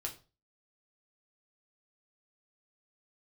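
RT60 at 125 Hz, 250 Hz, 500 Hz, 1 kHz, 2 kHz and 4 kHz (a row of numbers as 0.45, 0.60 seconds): 0.45, 0.35, 0.35, 0.30, 0.30, 0.30 seconds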